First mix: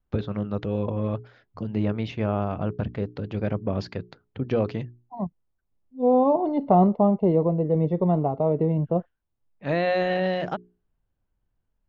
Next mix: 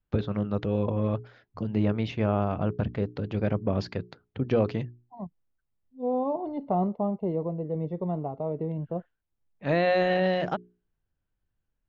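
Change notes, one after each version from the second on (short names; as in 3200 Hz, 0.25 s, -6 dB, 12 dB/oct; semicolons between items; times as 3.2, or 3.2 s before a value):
second voice -8.5 dB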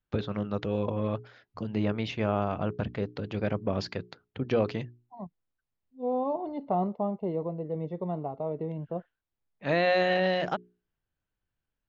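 master: add tilt +1.5 dB/oct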